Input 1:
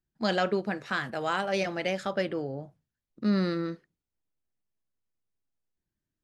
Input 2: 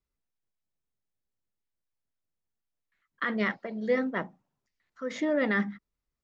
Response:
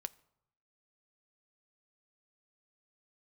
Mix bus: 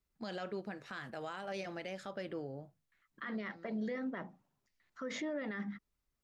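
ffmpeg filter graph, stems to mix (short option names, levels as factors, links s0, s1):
-filter_complex "[0:a]volume=0.355[s0];[1:a]bandreject=f=480:w=16,alimiter=level_in=1.12:limit=0.0631:level=0:latency=1:release=294,volume=0.891,volume=1.19,asplit=2[s1][s2];[s2]apad=whole_len=275021[s3];[s0][s3]sidechaincompress=threshold=0.00282:ratio=5:attack=7.6:release=624[s4];[s4][s1]amix=inputs=2:normalize=0,alimiter=level_in=2.37:limit=0.0631:level=0:latency=1:release=92,volume=0.422"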